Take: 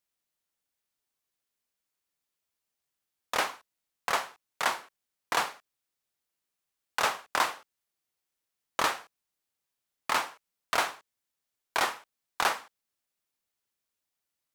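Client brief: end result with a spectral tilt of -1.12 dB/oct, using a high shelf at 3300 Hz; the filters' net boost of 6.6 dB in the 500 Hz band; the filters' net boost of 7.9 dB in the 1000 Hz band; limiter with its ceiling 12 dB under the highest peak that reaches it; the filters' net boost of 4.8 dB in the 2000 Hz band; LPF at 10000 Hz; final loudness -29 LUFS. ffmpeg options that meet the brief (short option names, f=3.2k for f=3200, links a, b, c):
-af "lowpass=10k,equalizer=f=500:t=o:g=5.5,equalizer=f=1k:t=o:g=7.5,equalizer=f=2k:t=o:g=4.5,highshelf=f=3.3k:g=-5,volume=2.5dB,alimiter=limit=-14.5dB:level=0:latency=1"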